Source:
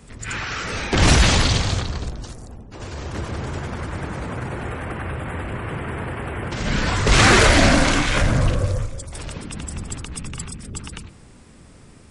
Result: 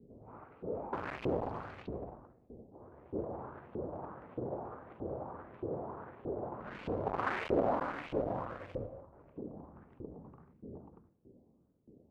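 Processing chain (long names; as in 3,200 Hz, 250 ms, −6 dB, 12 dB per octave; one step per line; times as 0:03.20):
running median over 25 samples
low-pass that shuts in the quiet parts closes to 300 Hz, open at −16.5 dBFS
tilt shelving filter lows +6 dB, about 880 Hz
gain into a clipping stage and back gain 15 dB
auto-filter band-pass saw up 1.6 Hz 380–2,900 Hz
level −2.5 dB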